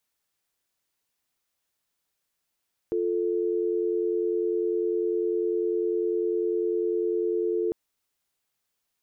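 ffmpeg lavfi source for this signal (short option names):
-f lavfi -i "aevalsrc='0.0501*(sin(2*PI*350*t)+sin(2*PI*440*t))':d=4.8:s=44100"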